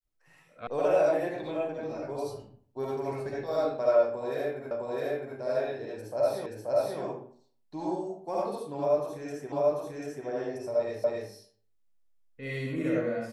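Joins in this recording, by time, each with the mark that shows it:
0.67 s: sound stops dead
4.71 s: repeat of the last 0.66 s
6.46 s: repeat of the last 0.53 s
9.52 s: repeat of the last 0.74 s
11.04 s: repeat of the last 0.27 s

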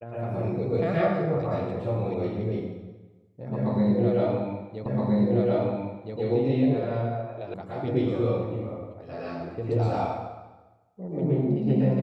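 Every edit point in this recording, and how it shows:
4.86 s: repeat of the last 1.32 s
7.54 s: sound stops dead

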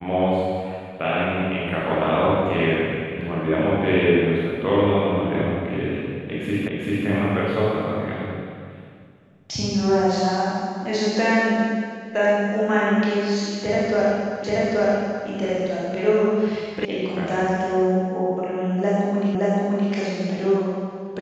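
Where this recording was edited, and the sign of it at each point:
6.68 s: repeat of the last 0.39 s
14.44 s: repeat of the last 0.83 s
16.85 s: sound stops dead
19.35 s: repeat of the last 0.57 s

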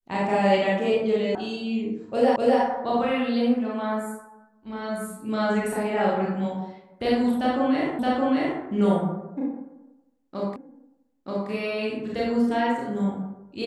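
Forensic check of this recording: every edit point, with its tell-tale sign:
1.35 s: sound stops dead
2.36 s: repeat of the last 0.25 s
7.99 s: repeat of the last 0.62 s
10.56 s: repeat of the last 0.93 s

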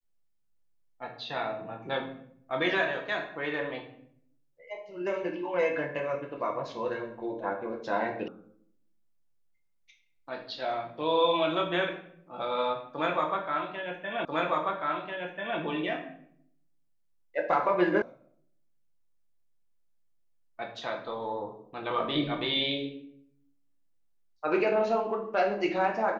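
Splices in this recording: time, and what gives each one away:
8.28 s: sound stops dead
14.25 s: repeat of the last 1.34 s
18.02 s: sound stops dead

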